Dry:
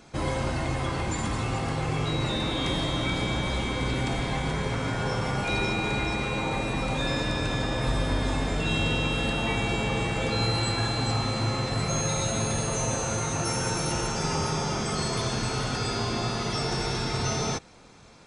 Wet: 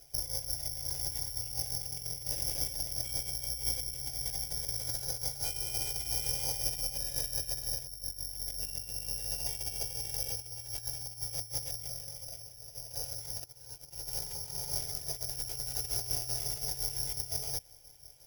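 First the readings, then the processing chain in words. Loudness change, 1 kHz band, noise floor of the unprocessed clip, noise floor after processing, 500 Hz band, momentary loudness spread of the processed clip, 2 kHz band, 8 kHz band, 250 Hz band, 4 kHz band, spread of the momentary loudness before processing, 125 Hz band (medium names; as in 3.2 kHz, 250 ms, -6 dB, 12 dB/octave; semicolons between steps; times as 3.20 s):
-6.5 dB, -22.0 dB, -31 dBFS, -53 dBFS, -19.5 dB, 7 LU, -23.0 dB, -2.0 dB, -26.5 dB, -6.5 dB, 3 LU, -17.0 dB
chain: FFT filter 140 Hz 0 dB, 310 Hz -15 dB, 660 Hz -6 dB, 1 kHz -4 dB, 6.1 kHz -14 dB, 8.9 kHz +14 dB; compressor with a negative ratio -33 dBFS, ratio -0.5; harmonic tremolo 5.7 Hz, depth 50%, crossover 2.4 kHz; static phaser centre 480 Hz, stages 4; careless resampling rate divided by 8×, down filtered, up zero stuff; trim -5.5 dB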